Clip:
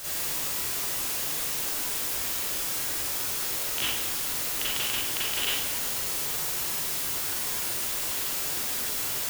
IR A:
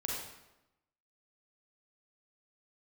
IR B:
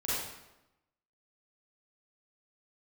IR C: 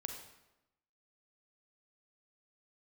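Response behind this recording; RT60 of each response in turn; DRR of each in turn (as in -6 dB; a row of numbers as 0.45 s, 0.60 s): B; 0.95 s, 0.95 s, 0.95 s; -3.0 dB, -10.0 dB, 3.5 dB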